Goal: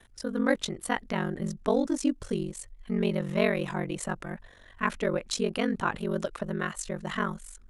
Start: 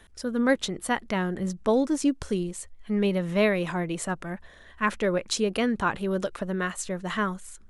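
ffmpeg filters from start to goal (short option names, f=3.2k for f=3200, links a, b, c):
-af "aeval=exprs='val(0)*sin(2*PI*23*n/s)':c=same"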